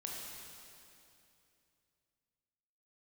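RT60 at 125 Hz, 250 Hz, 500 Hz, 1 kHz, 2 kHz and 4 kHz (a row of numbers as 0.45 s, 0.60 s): 3.4 s, 3.1 s, 2.9 s, 2.6 s, 2.6 s, 2.5 s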